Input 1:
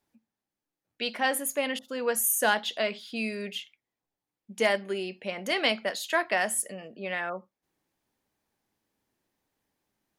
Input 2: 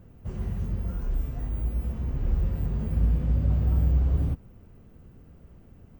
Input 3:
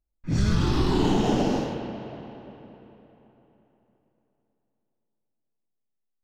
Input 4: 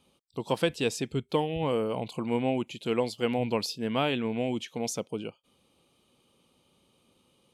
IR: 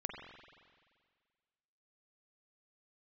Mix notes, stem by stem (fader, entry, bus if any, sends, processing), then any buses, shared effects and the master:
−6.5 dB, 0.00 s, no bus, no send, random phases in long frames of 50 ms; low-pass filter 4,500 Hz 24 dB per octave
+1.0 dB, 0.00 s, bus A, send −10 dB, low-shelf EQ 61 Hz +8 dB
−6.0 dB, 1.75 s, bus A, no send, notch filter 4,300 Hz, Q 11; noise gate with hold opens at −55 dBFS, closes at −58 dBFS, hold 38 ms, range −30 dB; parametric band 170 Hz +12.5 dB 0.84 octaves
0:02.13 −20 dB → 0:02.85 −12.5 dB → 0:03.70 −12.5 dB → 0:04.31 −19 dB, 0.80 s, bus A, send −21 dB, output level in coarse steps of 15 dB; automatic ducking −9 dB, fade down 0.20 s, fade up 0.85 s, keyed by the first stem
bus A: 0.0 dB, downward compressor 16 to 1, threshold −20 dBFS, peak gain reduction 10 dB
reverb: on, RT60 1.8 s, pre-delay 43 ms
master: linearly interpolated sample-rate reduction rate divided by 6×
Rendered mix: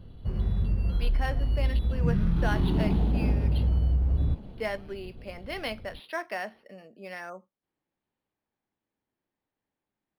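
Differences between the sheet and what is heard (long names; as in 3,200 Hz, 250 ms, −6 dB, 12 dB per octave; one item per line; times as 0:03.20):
stem 1: missing random phases in long frames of 50 ms
stem 2: send off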